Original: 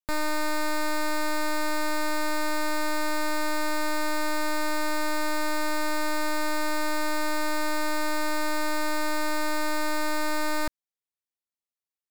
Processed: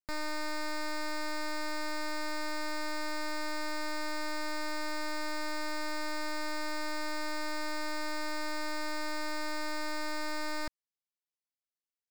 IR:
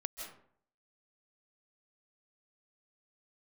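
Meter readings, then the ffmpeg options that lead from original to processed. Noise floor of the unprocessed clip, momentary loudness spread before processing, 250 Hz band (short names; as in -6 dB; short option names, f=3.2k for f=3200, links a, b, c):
under -85 dBFS, 0 LU, -9.0 dB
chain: -af "equalizer=f=2k:t=o:w=0.33:g=4,equalizer=f=5k:t=o:w=0.33:g=7,equalizer=f=12.5k:t=o:w=0.33:g=-11,volume=-9dB"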